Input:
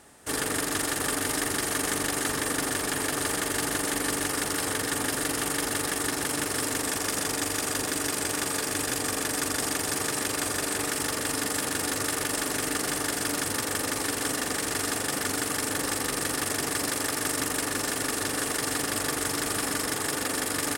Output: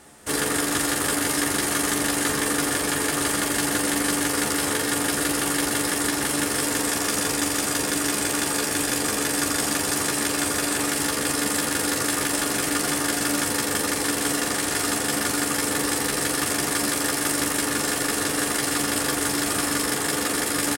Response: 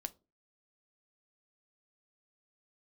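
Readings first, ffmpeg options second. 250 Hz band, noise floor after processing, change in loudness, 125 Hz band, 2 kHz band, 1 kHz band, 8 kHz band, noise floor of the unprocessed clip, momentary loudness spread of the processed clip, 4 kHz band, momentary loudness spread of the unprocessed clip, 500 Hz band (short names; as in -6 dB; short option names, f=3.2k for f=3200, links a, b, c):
+6.5 dB, -27 dBFS, +4.5 dB, +4.0 dB, +4.5 dB, +4.5 dB, +4.5 dB, -32 dBFS, 1 LU, +4.5 dB, 1 LU, +4.0 dB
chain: -filter_complex "[0:a]asplit=2[a][b];[b]adelay=14,volume=-5dB[c];[a][c]amix=inputs=2:normalize=0,asplit=2[d][e];[1:a]atrim=start_sample=2205,asetrate=40572,aresample=44100[f];[e][f]afir=irnorm=-1:irlink=0,volume=9.5dB[g];[d][g]amix=inputs=2:normalize=0,volume=-7dB"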